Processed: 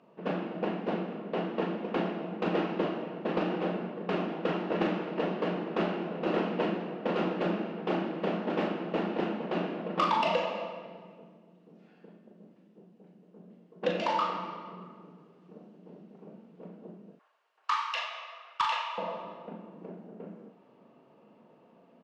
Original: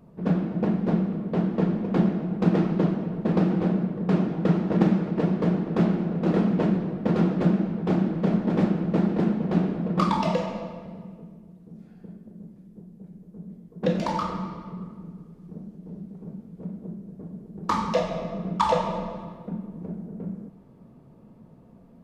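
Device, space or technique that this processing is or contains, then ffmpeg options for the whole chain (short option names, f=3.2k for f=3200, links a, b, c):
intercom: -filter_complex "[0:a]asettb=1/sr,asplit=3[a][b][c];[a]atrim=end=17.154[d];[b]atrim=start=17.15:end=18.98,asetpts=PTS-STARTPTS,afade=t=in:d=0.004:c=qsin,afade=t=out:st=1.826:d=0.004:c=qsin,highpass=f=1.1k:w=0.5412,highpass=f=1.1k:w=1.3066[e];[c]atrim=start=18.976[f];[d][e]acrossfade=d=0.004:c1=hsin:c2=qsin[g];[g][f]acrossfade=d=0.004:c1=qsin:c2=hsin,highpass=420,lowpass=4.3k,equalizer=f=2.8k:t=o:w=0.27:g=9,asoftclip=type=tanh:threshold=-17dB,asplit=2[h][i];[i]adelay=39,volume=-7dB[j];[h][j]amix=inputs=2:normalize=0"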